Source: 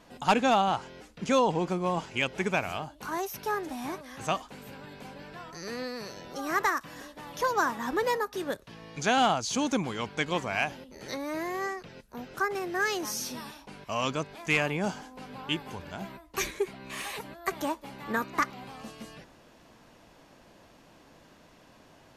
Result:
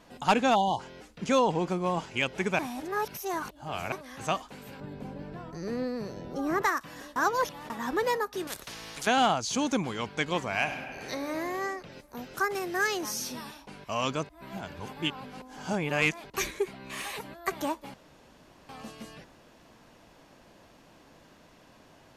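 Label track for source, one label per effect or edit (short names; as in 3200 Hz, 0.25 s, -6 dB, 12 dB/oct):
0.550000	0.800000	spectral delete 1100–2900 Hz
2.590000	3.920000	reverse
4.800000	6.620000	tilt shelf lows +8.5 dB, about 790 Hz
7.160000	7.700000	reverse
8.470000	9.070000	spectral compressor 4:1
10.550000	11.290000	reverb throw, RT60 2.3 s, DRR 5.5 dB
11.920000	12.870000	high shelf 4500 Hz +7 dB
14.290000	16.300000	reverse
17.940000	18.690000	room tone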